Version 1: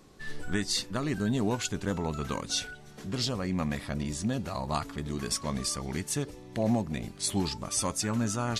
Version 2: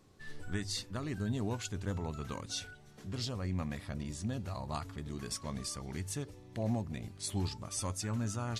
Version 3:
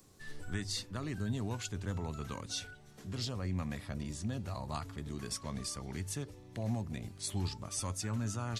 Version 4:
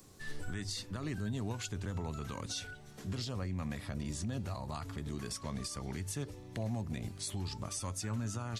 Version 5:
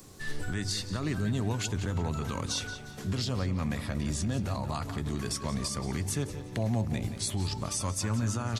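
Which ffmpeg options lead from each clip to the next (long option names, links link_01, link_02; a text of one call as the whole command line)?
ffmpeg -i in.wav -af "equalizer=frequency=96:width=3.6:gain=14.5,bandreject=frequency=50:width_type=h:width=6,bandreject=frequency=100:width_type=h:width=6,volume=-8.5dB" out.wav
ffmpeg -i in.wav -filter_complex "[0:a]acrossover=split=190|870|5800[link_01][link_02][link_03][link_04];[link_02]alimiter=level_in=11.5dB:limit=-24dB:level=0:latency=1,volume=-11.5dB[link_05];[link_04]acompressor=mode=upward:threshold=-59dB:ratio=2.5[link_06];[link_01][link_05][link_03][link_06]amix=inputs=4:normalize=0" out.wav
ffmpeg -i in.wav -af "alimiter=level_in=9dB:limit=-24dB:level=0:latency=1:release=135,volume=-9dB,volume=4dB" out.wav
ffmpeg -i in.wav -filter_complex "[0:a]asplit=2[link_01][link_02];[link_02]adelay=177,lowpass=frequency=4600:poles=1,volume=-10.5dB,asplit=2[link_03][link_04];[link_04]adelay=177,lowpass=frequency=4600:poles=1,volume=0.43,asplit=2[link_05][link_06];[link_06]adelay=177,lowpass=frequency=4600:poles=1,volume=0.43,asplit=2[link_07][link_08];[link_08]adelay=177,lowpass=frequency=4600:poles=1,volume=0.43,asplit=2[link_09][link_10];[link_10]adelay=177,lowpass=frequency=4600:poles=1,volume=0.43[link_11];[link_01][link_03][link_05][link_07][link_09][link_11]amix=inputs=6:normalize=0,volume=7dB" out.wav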